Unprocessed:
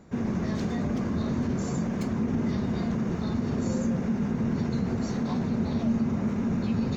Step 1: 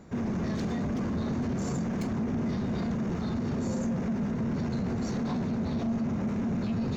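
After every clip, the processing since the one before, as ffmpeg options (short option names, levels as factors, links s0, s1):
-filter_complex "[0:a]asplit=2[s0][s1];[s1]alimiter=limit=0.0668:level=0:latency=1,volume=1.19[s2];[s0][s2]amix=inputs=2:normalize=0,asoftclip=type=tanh:threshold=0.106,volume=0.562"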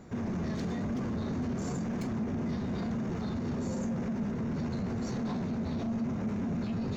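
-filter_complex "[0:a]flanger=delay=7.6:depth=5.4:regen=74:speed=0.98:shape=triangular,asplit=2[s0][s1];[s1]alimiter=level_in=4.73:limit=0.0631:level=0:latency=1,volume=0.211,volume=1.19[s2];[s0][s2]amix=inputs=2:normalize=0,volume=0.794"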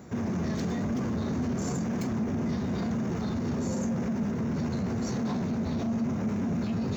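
-af "highpass=53,aexciter=amount=1.3:drive=4.3:freq=5500,volume=1.5"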